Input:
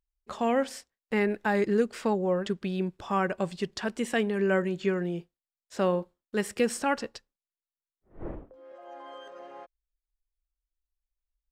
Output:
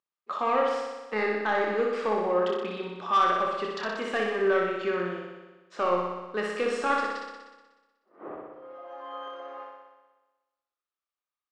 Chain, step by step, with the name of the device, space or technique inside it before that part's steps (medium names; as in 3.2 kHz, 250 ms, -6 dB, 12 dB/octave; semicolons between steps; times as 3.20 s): 7.00–8.27 s: high-pass 190 Hz 24 dB/octave; intercom (band-pass 360–3800 Hz; peaking EQ 1.2 kHz +12 dB 0.26 oct; saturation -18.5 dBFS, distortion -15 dB; doubling 28 ms -7 dB); flutter echo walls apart 10.5 m, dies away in 1.2 s